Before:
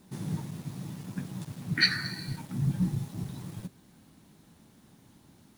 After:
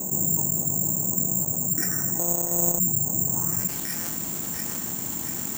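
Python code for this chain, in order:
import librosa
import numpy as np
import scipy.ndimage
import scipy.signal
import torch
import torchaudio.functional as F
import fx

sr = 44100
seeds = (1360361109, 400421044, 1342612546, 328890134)

p1 = fx.sample_sort(x, sr, block=256, at=(2.19, 2.79))
p2 = fx.low_shelf(p1, sr, hz=150.0, db=-8.0)
p3 = fx.rider(p2, sr, range_db=3, speed_s=0.5)
p4 = fx.air_absorb(p3, sr, metres=92.0)
p5 = p4 + fx.echo_thinned(p4, sr, ms=691, feedback_pct=61, hz=420.0, wet_db=-21.0, dry=0)
p6 = fx.filter_sweep_lowpass(p5, sr, from_hz=670.0, to_hz=6900.0, start_s=3.27, end_s=3.97, q=1.8)
p7 = (np.kron(scipy.signal.resample_poly(p6, 1, 6), np.eye(6)[0]) * 6)[:len(p6)]
p8 = fx.env_flatten(p7, sr, amount_pct=70)
y = p8 * 10.0 ** (-3.0 / 20.0)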